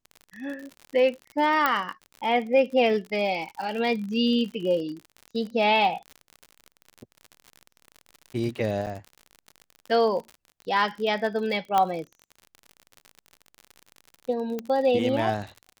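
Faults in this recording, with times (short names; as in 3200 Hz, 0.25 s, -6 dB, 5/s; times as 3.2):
crackle 61/s -33 dBFS
1.66 pop -9 dBFS
8.86–8.87 gap 8.2 ms
11.78 pop -10 dBFS
14.59 pop -18 dBFS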